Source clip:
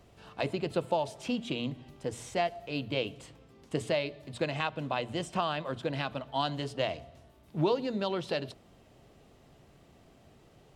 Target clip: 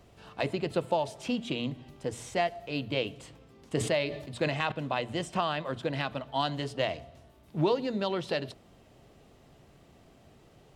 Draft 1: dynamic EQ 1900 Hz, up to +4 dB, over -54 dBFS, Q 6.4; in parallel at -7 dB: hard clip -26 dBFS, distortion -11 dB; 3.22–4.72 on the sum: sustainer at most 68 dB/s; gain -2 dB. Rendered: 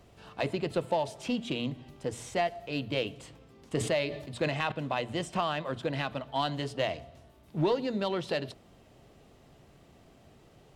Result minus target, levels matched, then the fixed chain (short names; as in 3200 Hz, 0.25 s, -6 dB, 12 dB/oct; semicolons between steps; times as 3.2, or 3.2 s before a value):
hard clip: distortion +22 dB
dynamic EQ 1900 Hz, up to +4 dB, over -54 dBFS, Q 6.4; in parallel at -7 dB: hard clip -17.5 dBFS, distortion -33 dB; 3.22–4.72 on the sum: sustainer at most 68 dB/s; gain -2 dB